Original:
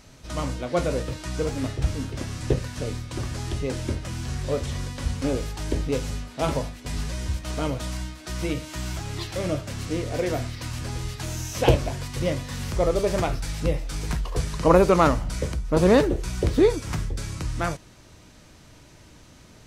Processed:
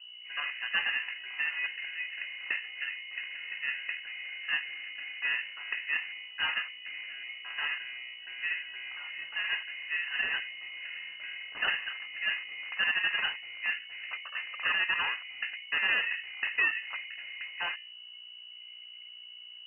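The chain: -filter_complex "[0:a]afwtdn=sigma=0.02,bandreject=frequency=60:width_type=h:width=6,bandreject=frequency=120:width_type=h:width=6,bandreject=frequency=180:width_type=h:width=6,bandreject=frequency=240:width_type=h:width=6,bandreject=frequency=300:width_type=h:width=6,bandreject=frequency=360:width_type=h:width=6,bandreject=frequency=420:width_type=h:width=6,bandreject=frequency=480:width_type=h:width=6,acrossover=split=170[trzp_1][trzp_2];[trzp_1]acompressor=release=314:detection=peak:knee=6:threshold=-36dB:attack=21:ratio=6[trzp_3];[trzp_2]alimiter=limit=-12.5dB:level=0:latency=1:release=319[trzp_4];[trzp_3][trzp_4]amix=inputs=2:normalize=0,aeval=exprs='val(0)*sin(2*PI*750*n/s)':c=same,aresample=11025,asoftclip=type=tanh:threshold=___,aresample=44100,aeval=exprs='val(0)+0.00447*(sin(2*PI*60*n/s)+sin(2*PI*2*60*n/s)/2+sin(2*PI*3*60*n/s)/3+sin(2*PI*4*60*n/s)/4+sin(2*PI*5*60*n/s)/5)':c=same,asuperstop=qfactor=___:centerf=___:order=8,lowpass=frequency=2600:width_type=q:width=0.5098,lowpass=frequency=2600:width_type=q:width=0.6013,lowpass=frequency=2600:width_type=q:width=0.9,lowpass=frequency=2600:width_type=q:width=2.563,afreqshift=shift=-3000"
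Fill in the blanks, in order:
-20.5dB, 2.7, 690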